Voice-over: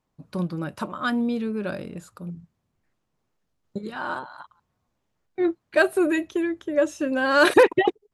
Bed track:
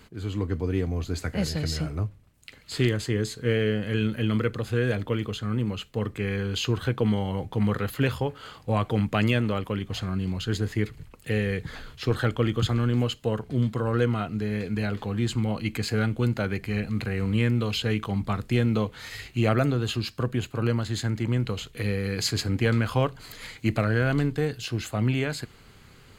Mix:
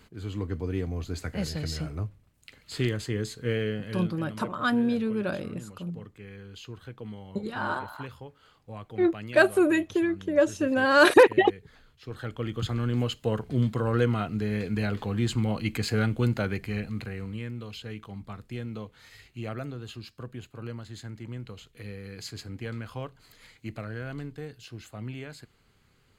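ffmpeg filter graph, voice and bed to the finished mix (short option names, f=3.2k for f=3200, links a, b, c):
-filter_complex "[0:a]adelay=3600,volume=-0.5dB[a];[1:a]volume=12dB,afade=t=out:st=3.57:d=0.67:silence=0.237137,afade=t=in:st=12.03:d=1.33:silence=0.158489,afade=t=out:st=16.34:d=1.06:silence=0.237137[b];[a][b]amix=inputs=2:normalize=0"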